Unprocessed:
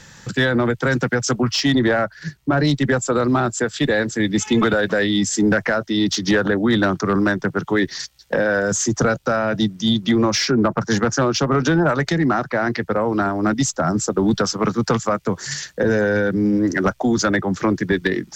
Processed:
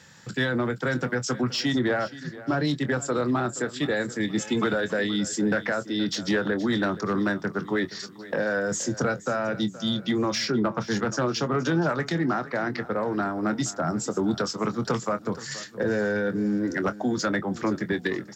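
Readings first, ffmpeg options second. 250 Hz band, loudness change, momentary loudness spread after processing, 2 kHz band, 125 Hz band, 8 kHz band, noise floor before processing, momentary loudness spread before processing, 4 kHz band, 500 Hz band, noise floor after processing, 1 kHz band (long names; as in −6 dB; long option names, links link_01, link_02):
−7.5 dB, −7.5 dB, 4 LU, −7.0 dB, −8.5 dB, −9.0 dB, −47 dBFS, 4 LU, −7.0 dB, −7.0 dB, −44 dBFS, −7.0 dB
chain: -filter_complex "[0:a]highpass=100,bandreject=frequency=6100:width=13,asplit=2[link_01][link_02];[link_02]adelay=24,volume=-12dB[link_03];[link_01][link_03]amix=inputs=2:normalize=0,aecho=1:1:473|946|1419:0.141|0.0579|0.0237,volume=-7.5dB"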